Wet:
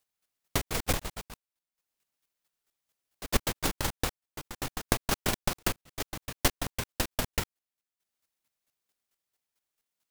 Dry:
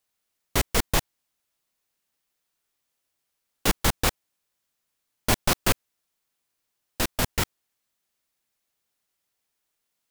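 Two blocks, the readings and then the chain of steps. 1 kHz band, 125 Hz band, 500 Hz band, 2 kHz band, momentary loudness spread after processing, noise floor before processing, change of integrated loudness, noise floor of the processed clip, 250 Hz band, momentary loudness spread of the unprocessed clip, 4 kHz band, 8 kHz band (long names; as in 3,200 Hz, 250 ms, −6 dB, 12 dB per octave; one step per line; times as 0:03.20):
−4.5 dB, −4.0 dB, −3.5 dB, −4.5 dB, 14 LU, −80 dBFS, −6.0 dB, below −85 dBFS, −3.5 dB, 7 LU, −4.0 dB, −4.0 dB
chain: delay with pitch and tempo change per echo 212 ms, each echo +2 semitones, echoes 3, each echo −6 dB
downward compressor 3 to 1, threshold −25 dBFS, peak gain reduction 8 dB
transient designer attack +9 dB, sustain −9 dB
square-wave tremolo 4.5 Hz, depth 65%, duty 15%
level +1 dB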